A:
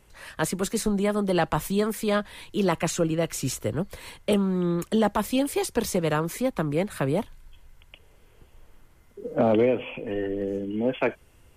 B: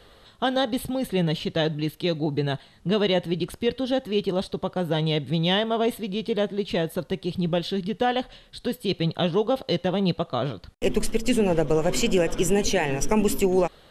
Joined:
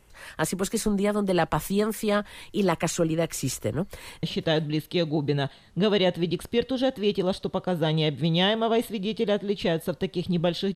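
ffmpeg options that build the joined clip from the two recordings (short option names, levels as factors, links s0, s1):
-filter_complex "[0:a]apad=whole_dur=10.75,atrim=end=10.75,atrim=end=4.232[s0];[1:a]atrim=start=1.318:end=7.84[s1];[s0][s1]acrossfade=d=0.004:c1=hsin:c2=hsin,asplit=2[s2][s3];[s3]afade=t=in:st=3.8:d=0.01,afade=t=out:st=4.23:d=0.01,aecho=0:1:500|1000:0.141254|0.0141254[s4];[s2][s4]amix=inputs=2:normalize=0"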